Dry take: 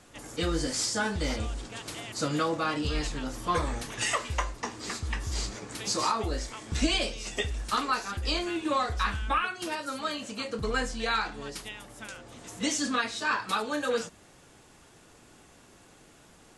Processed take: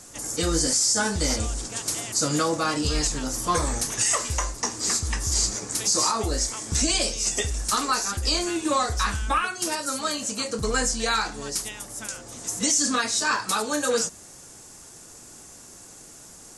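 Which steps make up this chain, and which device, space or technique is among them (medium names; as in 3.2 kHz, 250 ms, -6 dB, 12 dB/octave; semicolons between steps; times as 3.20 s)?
over-bright horn tweeter (resonant high shelf 4.5 kHz +10.5 dB, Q 1.5; peak limiter -17 dBFS, peak gain reduction 11 dB); trim +4.5 dB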